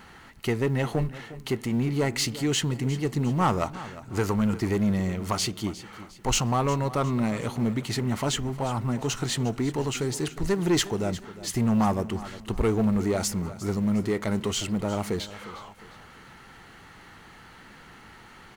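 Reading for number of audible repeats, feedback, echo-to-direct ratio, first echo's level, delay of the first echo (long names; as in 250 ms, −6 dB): 3, 39%, −15.5 dB, −16.0 dB, 356 ms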